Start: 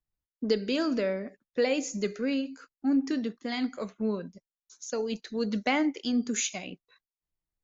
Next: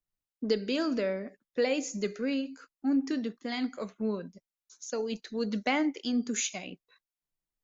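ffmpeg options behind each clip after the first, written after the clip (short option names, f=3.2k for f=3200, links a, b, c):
-af "equalizer=f=61:w=1.8:g=-12.5,volume=-1.5dB"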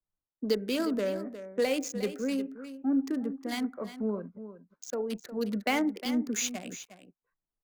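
-filter_complex "[0:a]acrossover=split=130|900|1600[a][b][c][d];[d]acrusher=bits=5:mix=0:aa=0.5[e];[a][b][c][e]amix=inputs=4:normalize=0,aecho=1:1:358:0.237"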